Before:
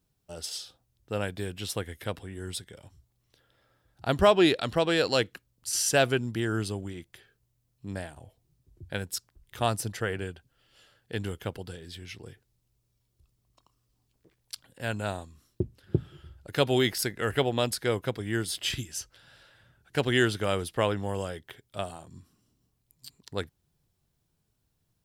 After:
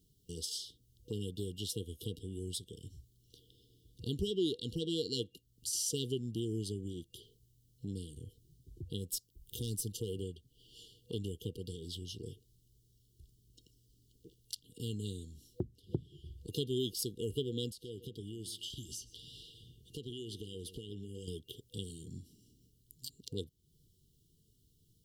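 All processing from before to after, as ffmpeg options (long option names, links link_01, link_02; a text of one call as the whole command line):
ffmpeg -i in.wav -filter_complex "[0:a]asettb=1/sr,asplit=3[link_01][link_02][link_03];[link_01]atrim=end=9.084[link_04];[link_02]atrim=start=9.08:end=10.22,asetpts=PTS-STARTPTS,afade=type=in:duration=0.004:curve=qsin,afade=type=out:start_time=1.136:duration=0.004:curve=qsin,highshelf=frequency=10000:gain=10.5,aeval=exprs='(tanh(11.2*val(0)+0.2)-tanh(0.2))/11.2':channel_layout=same[link_05];[link_03]atrim=start=10.216[link_06];[link_04][link_05]acrossfade=duration=0.004:curve1=hsin:curve2=qsin[link_07];[link_07][link_06]acrossfade=duration=0.004:curve1=qsin:curve2=hsin,asettb=1/sr,asplit=3[link_08][link_09][link_10];[link_08]atrim=end=17.714[link_11];[link_09]atrim=start=17.71:end=21.28,asetpts=PTS-STARTPTS,afade=type=in:duration=0.004:curve=qsin,afade=type=out:start_time=3.566:duration=0.004:curve=qsin,equalizer=frequency=2200:width=1.3:gain=6,acompressor=threshold=-45dB:ratio=3:attack=3.2:release=140:knee=1:detection=peak,asplit=2[link_12][link_13];[link_13]adelay=124,lowpass=frequency=2500:poles=1,volume=-14.5dB,asplit=2[link_14][link_15];[link_15]adelay=124,lowpass=frequency=2500:poles=1,volume=0.36,asplit=2[link_16][link_17];[link_17]adelay=124,lowpass=frequency=2500:poles=1,volume=0.36[link_18];[link_12][link_14][link_16][link_18]amix=inputs=4:normalize=0,atrim=end_sample=157437[link_19];[link_10]atrim=start=21.276[link_20];[link_11][link_19]acrossfade=duration=0.004:curve1=hsin:curve2=qsin[link_21];[link_21][link_20]acrossfade=duration=0.004:curve1=qsin:curve2=hsin,afftfilt=real='re*(1-between(b*sr/4096,490,2800))':imag='im*(1-between(b*sr/4096,490,2800))':win_size=4096:overlap=0.75,acompressor=threshold=-50dB:ratio=2,volume=5.5dB" out.wav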